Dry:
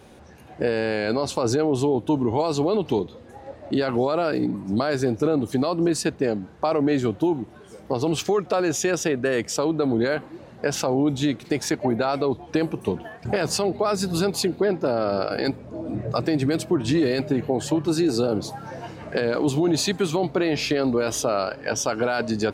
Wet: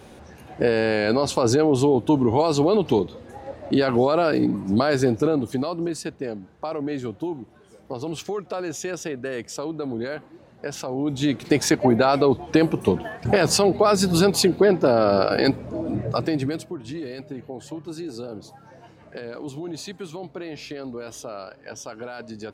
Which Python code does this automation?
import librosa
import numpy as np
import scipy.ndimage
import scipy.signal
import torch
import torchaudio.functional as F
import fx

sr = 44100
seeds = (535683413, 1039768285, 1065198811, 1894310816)

y = fx.gain(x, sr, db=fx.line((5.05, 3.0), (6.01, -7.0), (10.89, -7.0), (11.47, 5.0), (15.71, 5.0), (16.45, -2.5), (16.76, -12.0)))